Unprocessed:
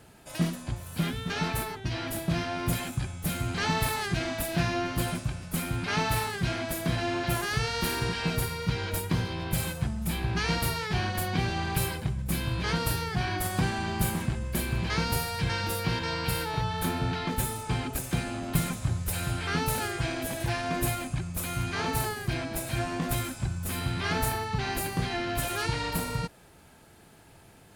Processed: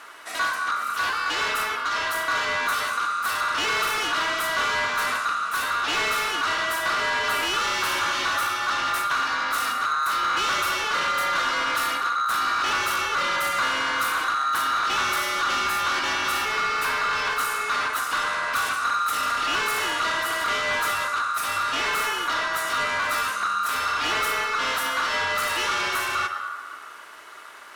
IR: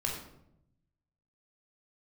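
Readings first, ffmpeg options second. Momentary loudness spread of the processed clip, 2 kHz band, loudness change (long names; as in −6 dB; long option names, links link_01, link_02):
2 LU, +11.0 dB, +6.5 dB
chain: -filter_complex "[0:a]asplit=2[link_01][link_02];[1:a]atrim=start_sample=2205,asetrate=26019,aresample=44100[link_03];[link_02][link_03]afir=irnorm=-1:irlink=0,volume=-14dB[link_04];[link_01][link_04]amix=inputs=2:normalize=0,aeval=exprs='val(0)*sin(2*PI*1300*n/s)':channel_layout=same,asplit=2[link_05][link_06];[link_06]highpass=frequency=720:poles=1,volume=23dB,asoftclip=type=tanh:threshold=-11dB[link_07];[link_05][link_07]amix=inputs=2:normalize=0,lowpass=frequency=5200:poles=1,volume=-6dB,volume=-4.5dB"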